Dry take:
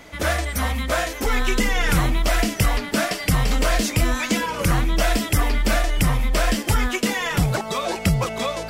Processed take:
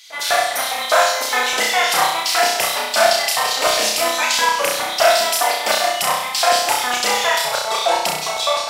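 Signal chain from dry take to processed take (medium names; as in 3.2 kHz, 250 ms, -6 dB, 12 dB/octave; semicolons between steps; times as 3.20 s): LFO high-pass square 4.9 Hz 740–4000 Hz; flutter echo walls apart 5.6 m, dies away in 0.78 s; trim +3.5 dB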